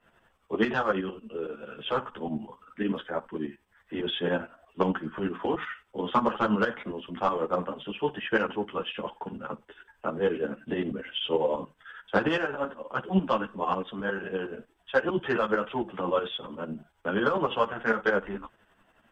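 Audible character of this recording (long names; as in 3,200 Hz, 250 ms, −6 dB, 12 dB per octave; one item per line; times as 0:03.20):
tremolo saw up 11 Hz, depth 75%
a shimmering, thickened sound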